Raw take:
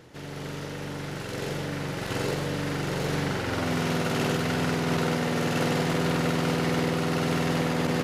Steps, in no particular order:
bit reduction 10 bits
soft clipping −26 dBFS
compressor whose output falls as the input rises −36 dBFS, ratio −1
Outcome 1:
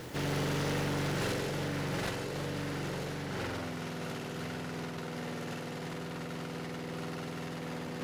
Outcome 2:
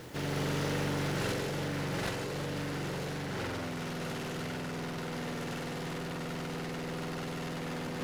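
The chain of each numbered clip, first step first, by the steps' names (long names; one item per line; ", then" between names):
bit reduction, then compressor whose output falls as the input rises, then soft clipping
soft clipping, then bit reduction, then compressor whose output falls as the input rises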